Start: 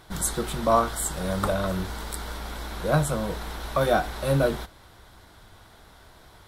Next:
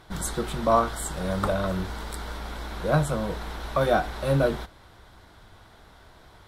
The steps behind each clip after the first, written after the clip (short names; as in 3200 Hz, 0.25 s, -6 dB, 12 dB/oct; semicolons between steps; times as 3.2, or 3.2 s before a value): high shelf 6700 Hz -8.5 dB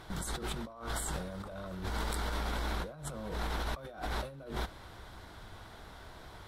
negative-ratio compressor -35 dBFS, ratio -1; gain -4.5 dB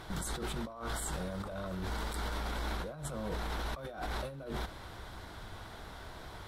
limiter -31 dBFS, peak gain reduction 11 dB; gain +3 dB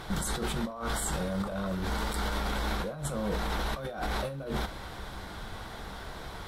non-linear reverb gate 90 ms falling, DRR 10 dB; gain +5.5 dB